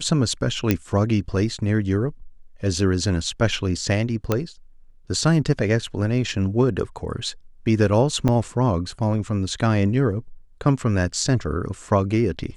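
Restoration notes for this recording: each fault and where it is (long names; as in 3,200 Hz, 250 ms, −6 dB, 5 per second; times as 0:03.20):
0:00.71: click −4 dBFS
0:04.32: click −7 dBFS
0:08.28–0:08.29: drop-out 6.6 ms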